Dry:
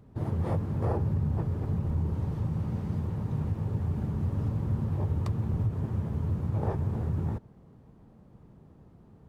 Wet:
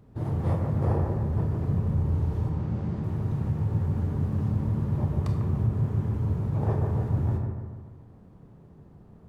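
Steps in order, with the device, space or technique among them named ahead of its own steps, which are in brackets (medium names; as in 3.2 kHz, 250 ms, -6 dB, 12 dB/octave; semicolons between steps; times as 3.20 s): 2.49–3.04 s: distance through air 60 m; bucket-brigade echo 147 ms, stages 2048, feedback 52%, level -5 dB; bathroom (reverberation RT60 0.60 s, pre-delay 22 ms, DRR 5.5 dB)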